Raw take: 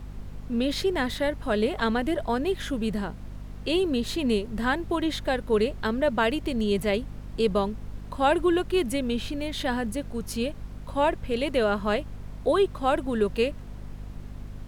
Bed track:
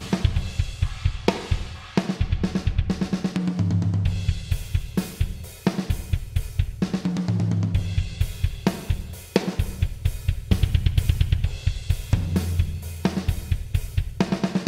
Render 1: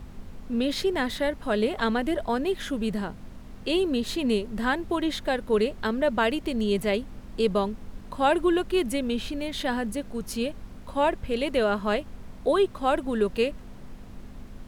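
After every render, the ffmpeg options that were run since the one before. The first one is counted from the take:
-af "bandreject=f=50:t=h:w=4,bandreject=f=100:t=h:w=4,bandreject=f=150:t=h:w=4"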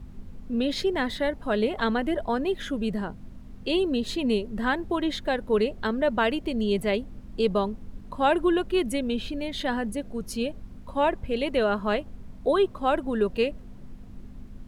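-af "afftdn=nr=8:nf=-43"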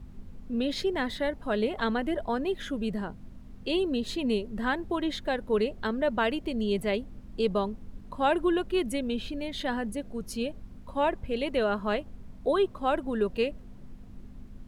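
-af "volume=-3dB"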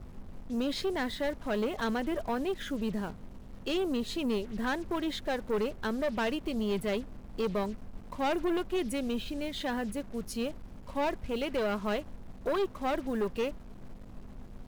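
-af "acrusher=bits=7:mix=0:aa=0.5,aeval=exprs='(tanh(17.8*val(0)+0.35)-tanh(0.35))/17.8':c=same"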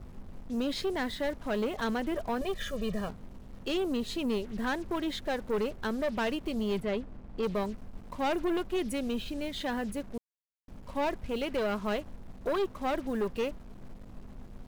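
-filter_complex "[0:a]asettb=1/sr,asplit=3[a][b][c];[a]atrim=end=2.414[d];[b]atrim=start=2.41:end=3.09,asetpts=PTS-STARTPTS,afade=t=in:d=0.004:c=qsin,afade=t=out:st=0.676:d=0.004:c=qsin,aecho=1:1:1.7:0.88,atrim=end_sample=29988[e];[c]atrim=start=3.086[f];[d][e]acrossfade=d=0.004:c1=hsin:c2=qsin[g];[g][f]acrossfade=d=0.004:c1=qsin:c2=hsin,asettb=1/sr,asplit=3[h][i][j];[h]atrim=end=6.804[k];[i]atrim=start=6.8:end=7.43,asetpts=PTS-STARTPTS,afade=t=in:d=0.004:c=qsin,afade=t=out:st=0.626:d=0.004:c=qsin,lowpass=f=2.6k:p=1[l];[j]atrim=start=7.426[m];[k][l]acrossfade=d=0.004:c1=hsin:c2=qsin[n];[n][m]acrossfade=d=0.004:c1=qsin:c2=hsin,asplit=3[o][p][q];[o]atrim=end=10.18,asetpts=PTS-STARTPTS,afade=t=out:st=10.176:d=0.004:c=hsin[r];[p]atrim=start=10.18:end=10.68,asetpts=PTS-STARTPTS,volume=0[s];[q]atrim=start=10.68,asetpts=PTS-STARTPTS,afade=t=in:d=0.004:c=hsin[t];[r][s][t]concat=n=3:v=0:a=1"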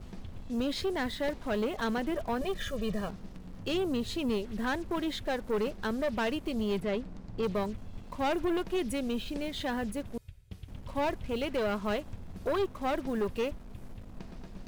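-filter_complex "[1:a]volume=-25.5dB[a];[0:a][a]amix=inputs=2:normalize=0"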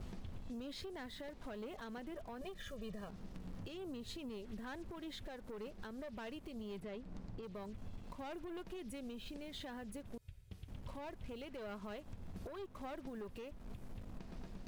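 -af "acompressor=threshold=-37dB:ratio=10,alimiter=level_in=14.5dB:limit=-24dB:level=0:latency=1:release=406,volume=-14.5dB"

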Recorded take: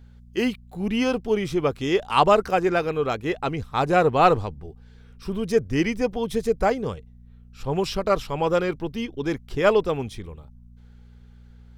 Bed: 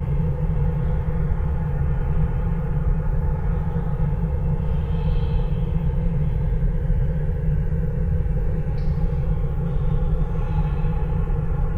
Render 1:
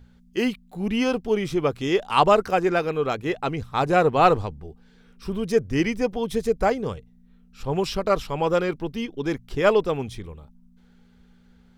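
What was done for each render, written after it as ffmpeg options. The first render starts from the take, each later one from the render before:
-af "bandreject=f=60:t=h:w=4,bandreject=f=120:t=h:w=4"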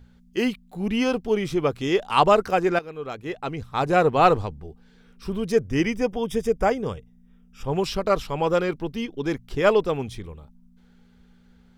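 -filter_complex "[0:a]asettb=1/sr,asplit=3[a][b][c];[a]atrim=end=5.644[d];[b]atrim=start=5.64:end=7.68,asetpts=PTS-STARTPTS,afade=t=in:d=0.004:c=qsin,afade=t=out:st=2.036:d=0.004:c=qsin,asuperstop=centerf=4200:order=20:qfactor=5.7[e];[c]atrim=start=7.676[f];[d][e]acrossfade=d=0.004:c1=hsin:c2=qsin[g];[g][f]acrossfade=d=0.004:c1=qsin:c2=hsin,asplit=2[h][i];[h]atrim=end=2.79,asetpts=PTS-STARTPTS,afade=t=out:st=2.786:d=0.004:c=hsin:silence=0.199526[j];[i]atrim=start=2.79,asetpts=PTS-STARTPTS,afade=t=in:d=1.21:silence=0.199526[k];[j][k]concat=n=2:v=0:a=1"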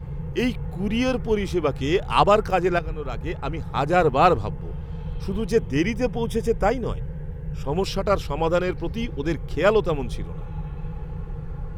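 -filter_complex "[1:a]volume=-10dB[a];[0:a][a]amix=inputs=2:normalize=0"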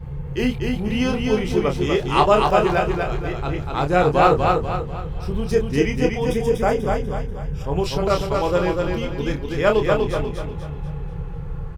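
-filter_complex "[0:a]asplit=2[a][b];[b]adelay=28,volume=-6dB[c];[a][c]amix=inputs=2:normalize=0,aecho=1:1:244|488|732|976|1220:0.668|0.274|0.112|0.0461|0.0189"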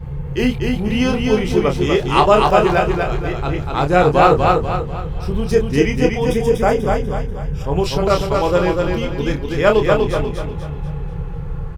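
-af "volume=4dB,alimiter=limit=-1dB:level=0:latency=1"

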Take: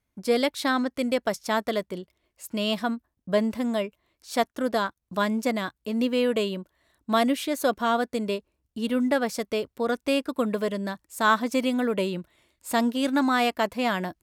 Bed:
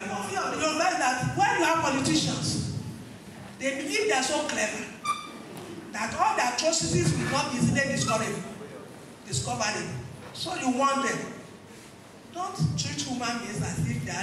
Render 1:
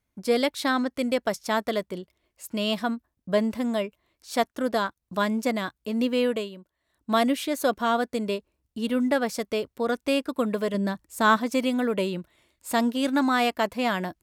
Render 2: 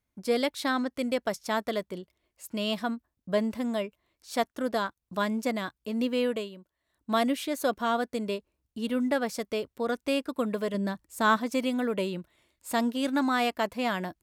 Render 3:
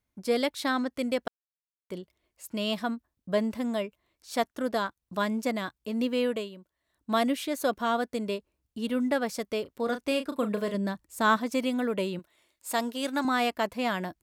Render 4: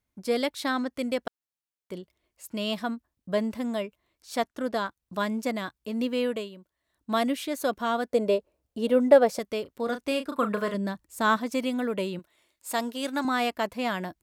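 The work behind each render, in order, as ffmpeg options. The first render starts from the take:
-filter_complex "[0:a]asettb=1/sr,asplit=3[a][b][c];[a]atrim=end=10.744[d];[b]atrim=start=10.74:end=11.37,asetpts=PTS-STARTPTS,afade=t=in:d=0.004:c=qsin,afade=t=out:st=0.626:d=0.004:c=qsin,lowshelf=f=390:g=6.5[e];[c]atrim=start=11.366[f];[d][e]acrossfade=d=0.004:c1=hsin:c2=qsin[g];[g][f]acrossfade=d=0.004:c1=qsin:c2=hsin,asplit=3[h][i][j];[h]atrim=end=6.5,asetpts=PTS-STARTPTS,afade=t=out:st=6.26:d=0.24:silence=0.298538[k];[i]atrim=start=6.5:end=6.86,asetpts=PTS-STARTPTS,volume=-10.5dB[l];[j]atrim=start=6.86,asetpts=PTS-STARTPTS,afade=t=in:d=0.24:silence=0.298538[m];[k][l][m]concat=n=3:v=0:a=1"
-af "volume=-3.5dB"
-filter_complex "[0:a]asettb=1/sr,asplit=3[a][b][c];[a]atrim=end=9.624[d];[b]atrim=start=9.62:end=10.74,asetpts=PTS-STARTPTS,afade=t=in:d=0.004:c=qsin,afade=t=out:st=1.116:d=0.004:c=qsin,asplit=2[e][f];[f]adelay=34,volume=-9dB[g];[e][g]amix=inputs=2:normalize=0,atrim=end_sample=49392[h];[c]atrim=start=10.736[i];[d][h]acrossfade=d=0.004:c1=hsin:c2=qsin[j];[j][i]acrossfade=d=0.004:c1=qsin:c2=hsin,asettb=1/sr,asplit=3[k][l][m];[k]atrim=end=12.194[n];[l]atrim=start=12.19:end=13.25,asetpts=PTS-STARTPTS,afade=t=in:d=0.004:c=qsin,afade=t=out:st=1.056:d=0.004:c=qsin,bass=f=250:g=-11,treble=f=4k:g=3[o];[m]atrim=start=13.246[p];[n][o]acrossfade=d=0.004:c1=hsin:c2=qsin[q];[q][p]acrossfade=d=0.004:c1=qsin:c2=hsin,asplit=3[r][s][t];[r]atrim=end=1.28,asetpts=PTS-STARTPTS,afade=t=out:st=1.276:d=0.004:c=hsin[u];[s]atrim=start=1.28:end=1.9,asetpts=PTS-STARTPTS,volume=0[v];[t]atrim=start=1.9,asetpts=PTS-STARTPTS,afade=t=in:d=0.004:c=hsin[w];[u][v][w]concat=n=3:v=0:a=1"
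-filter_complex "[0:a]asettb=1/sr,asplit=3[a][b][c];[a]atrim=end=4.374[d];[b]atrim=start=4.37:end=4.85,asetpts=PTS-STARTPTS,afade=t=in:d=0.004:c=qsin,afade=t=out:st=0.476:d=0.004:c=qsin,highshelf=f=11k:g=-7[e];[c]atrim=start=4.846[f];[d][e]acrossfade=d=0.004:c1=hsin:c2=qsin[g];[g][f]acrossfade=d=0.004:c1=qsin:c2=hsin,asettb=1/sr,asplit=3[h][i][j];[h]atrim=end=8.104[k];[i]atrim=start=8.1:end=9.39,asetpts=PTS-STARTPTS,afade=t=in:d=0.004:c=qsin,afade=t=out:st=1.286:d=0.004:c=qsin,equalizer=f=570:t=o:w=1.1:g=13.5[l];[j]atrim=start=9.386[m];[k][l]acrossfade=d=0.004:c1=hsin:c2=qsin[n];[n][m]acrossfade=d=0.004:c1=qsin:c2=hsin,asettb=1/sr,asplit=3[o][p][q];[o]atrim=end=10.314[r];[p]atrim=start=10.31:end=10.74,asetpts=PTS-STARTPTS,afade=t=in:d=0.004:c=qsin,afade=t=out:st=0.426:d=0.004:c=qsin,equalizer=f=1.3k:w=1.5:g=11[s];[q]atrim=start=10.736[t];[r][s]acrossfade=d=0.004:c1=hsin:c2=qsin[u];[u][t]acrossfade=d=0.004:c1=qsin:c2=hsin"

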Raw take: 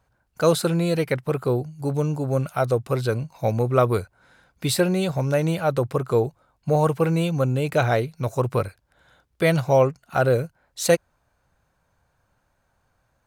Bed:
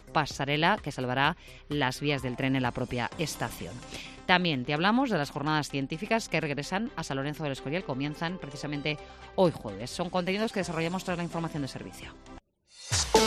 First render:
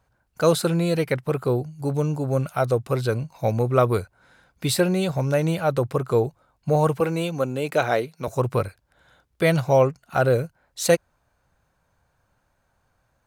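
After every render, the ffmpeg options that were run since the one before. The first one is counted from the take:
-filter_complex "[0:a]asettb=1/sr,asplit=3[a][b][c];[a]atrim=end=7.004[d];[b]atrim=start=7:end=8.28,asetpts=PTS-STARTPTS,afade=t=in:d=0.004:c=qsin,afade=t=out:st=1.276:d=0.004:c=qsin,highpass=220[e];[c]atrim=start=8.276[f];[d][e]acrossfade=d=0.004:c1=hsin:c2=qsin[g];[g][f]acrossfade=d=0.004:c1=qsin:c2=hsin"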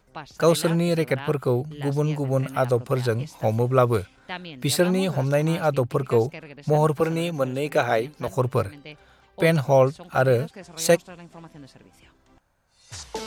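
-filter_complex "[1:a]volume=-11dB[a];[0:a][a]amix=inputs=2:normalize=0"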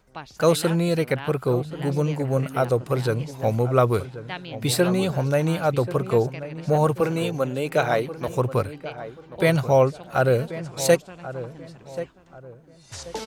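-filter_complex "[0:a]asplit=2[a][b];[b]adelay=1084,lowpass=f=1.6k:p=1,volume=-13dB,asplit=2[c][d];[d]adelay=1084,lowpass=f=1.6k:p=1,volume=0.32,asplit=2[e][f];[f]adelay=1084,lowpass=f=1.6k:p=1,volume=0.32[g];[a][c][e][g]amix=inputs=4:normalize=0"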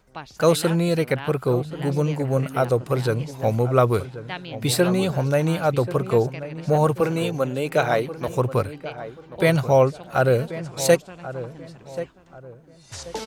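-af "volume=1dB"

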